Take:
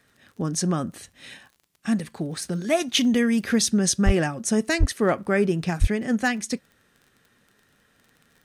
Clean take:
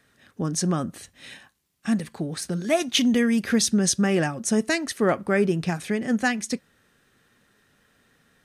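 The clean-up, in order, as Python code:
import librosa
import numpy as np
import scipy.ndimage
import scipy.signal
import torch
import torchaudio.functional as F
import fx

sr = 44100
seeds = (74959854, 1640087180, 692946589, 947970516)

y = fx.fix_declip(x, sr, threshold_db=-10.0)
y = fx.fix_declick_ar(y, sr, threshold=6.5)
y = fx.highpass(y, sr, hz=140.0, slope=24, at=(4.05, 4.17), fade=0.02)
y = fx.highpass(y, sr, hz=140.0, slope=24, at=(4.79, 4.91), fade=0.02)
y = fx.highpass(y, sr, hz=140.0, slope=24, at=(5.8, 5.92), fade=0.02)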